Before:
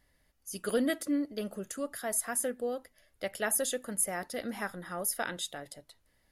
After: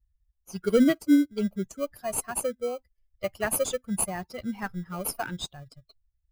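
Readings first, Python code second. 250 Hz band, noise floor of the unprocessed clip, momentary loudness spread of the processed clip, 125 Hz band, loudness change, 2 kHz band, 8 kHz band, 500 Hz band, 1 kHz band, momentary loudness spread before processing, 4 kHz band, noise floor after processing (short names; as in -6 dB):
+9.5 dB, -72 dBFS, 14 LU, +10.5 dB, +5.5 dB, +1.0 dB, +0.5 dB, +5.5 dB, +3.5 dB, 11 LU, +2.0 dB, -76 dBFS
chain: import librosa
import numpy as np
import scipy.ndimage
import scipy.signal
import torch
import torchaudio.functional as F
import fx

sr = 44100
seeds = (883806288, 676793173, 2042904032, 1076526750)

p1 = fx.bin_expand(x, sr, power=2.0)
p2 = fx.low_shelf(p1, sr, hz=390.0, db=9.5)
p3 = fx.sample_hold(p2, sr, seeds[0], rate_hz=1800.0, jitter_pct=0)
p4 = p2 + (p3 * librosa.db_to_amplitude(-9.0))
y = p4 * librosa.db_to_amplitude(4.0)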